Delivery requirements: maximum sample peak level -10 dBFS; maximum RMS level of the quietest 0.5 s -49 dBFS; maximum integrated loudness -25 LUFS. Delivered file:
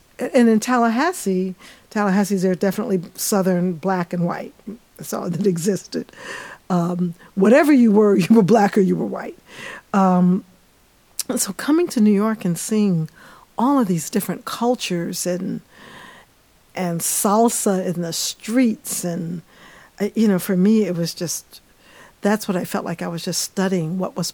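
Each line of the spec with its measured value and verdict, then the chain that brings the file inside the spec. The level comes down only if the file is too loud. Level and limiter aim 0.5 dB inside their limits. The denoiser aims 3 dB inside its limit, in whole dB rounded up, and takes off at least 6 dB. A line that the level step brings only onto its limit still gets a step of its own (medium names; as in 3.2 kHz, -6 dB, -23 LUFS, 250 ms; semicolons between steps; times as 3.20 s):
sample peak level -4.0 dBFS: fail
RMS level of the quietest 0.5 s -55 dBFS: pass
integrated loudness -19.5 LUFS: fail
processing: trim -6 dB; peak limiter -10.5 dBFS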